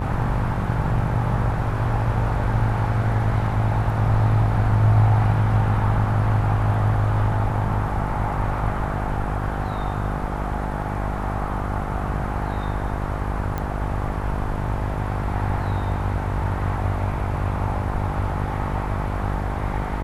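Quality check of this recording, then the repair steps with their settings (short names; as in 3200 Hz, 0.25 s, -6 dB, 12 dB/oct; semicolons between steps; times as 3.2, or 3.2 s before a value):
buzz 50 Hz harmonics 22 -27 dBFS
13.58 pop -14 dBFS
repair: de-click; de-hum 50 Hz, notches 22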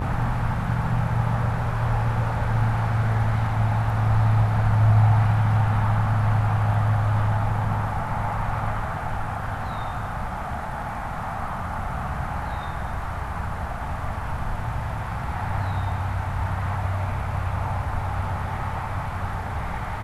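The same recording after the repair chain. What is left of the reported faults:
none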